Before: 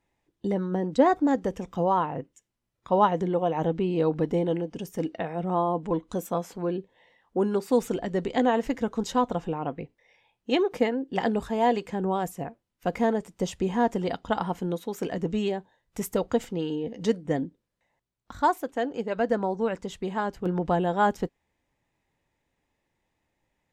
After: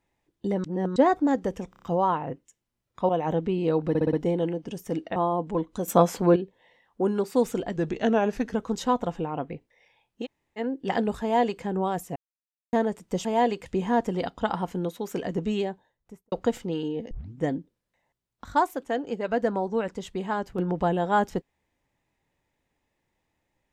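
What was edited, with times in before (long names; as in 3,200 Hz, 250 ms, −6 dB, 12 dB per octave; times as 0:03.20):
0:00.64–0:00.96: reverse
0:01.70: stutter 0.03 s, 5 plays
0:02.97–0:03.41: remove
0:04.21: stutter 0.06 s, 5 plays
0:05.24–0:05.52: remove
0:06.24–0:06.72: clip gain +10 dB
0:08.12–0:08.83: play speed 90%
0:10.52–0:10.87: fill with room tone, crossfade 0.06 s
0:11.50–0:11.91: duplicate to 0:13.53
0:12.44–0:13.01: silence
0:15.55–0:16.19: fade out and dull
0:16.98: tape start 0.30 s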